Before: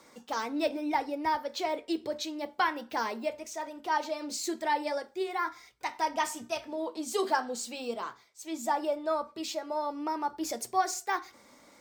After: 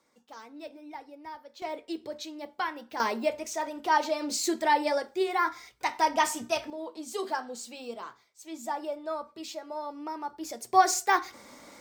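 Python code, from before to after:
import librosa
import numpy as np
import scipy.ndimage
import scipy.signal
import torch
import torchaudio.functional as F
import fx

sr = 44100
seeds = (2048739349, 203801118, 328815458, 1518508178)

y = fx.gain(x, sr, db=fx.steps((0.0, -13.5), (1.62, -4.0), (3.0, 5.0), (6.7, -4.0), (10.73, 7.0)))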